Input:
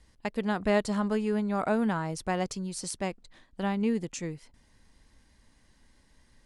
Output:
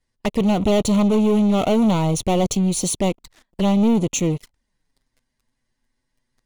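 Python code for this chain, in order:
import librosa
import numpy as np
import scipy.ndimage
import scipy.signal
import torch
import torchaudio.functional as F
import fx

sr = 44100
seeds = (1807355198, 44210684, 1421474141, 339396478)

y = fx.leveller(x, sr, passes=5)
y = fx.env_flanger(y, sr, rest_ms=8.1, full_db=-19.5)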